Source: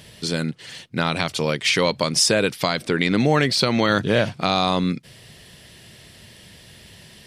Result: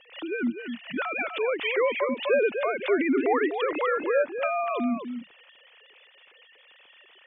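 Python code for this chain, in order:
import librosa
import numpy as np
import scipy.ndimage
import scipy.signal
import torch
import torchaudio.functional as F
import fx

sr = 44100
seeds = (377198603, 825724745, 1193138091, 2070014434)

p1 = fx.sine_speech(x, sr)
p2 = fx.env_lowpass_down(p1, sr, base_hz=1600.0, full_db=-18.5)
p3 = fx.peak_eq(p2, sr, hz=2600.0, db=7.0, octaves=0.41)
p4 = p3 + fx.echo_single(p3, sr, ms=249, db=-8.0, dry=0)
p5 = fx.pre_swell(p4, sr, db_per_s=150.0)
y = F.gain(torch.from_numpy(p5), -5.5).numpy()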